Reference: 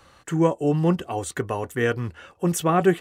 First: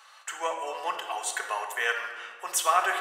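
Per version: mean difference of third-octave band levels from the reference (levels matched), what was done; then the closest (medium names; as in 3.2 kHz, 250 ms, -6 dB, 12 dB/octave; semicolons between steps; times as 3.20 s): 14.5 dB: high-pass 770 Hz 24 dB/octave; peaking EQ 4.2 kHz +2.5 dB 2 oct; simulated room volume 1800 m³, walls mixed, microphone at 1.5 m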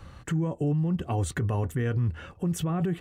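6.0 dB: tone controls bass +15 dB, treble -4 dB; compression, threshold -17 dBFS, peak gain reduction 10.5 dB; peak limiter -20.5 dBFS, peak gain reduction 10 dB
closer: second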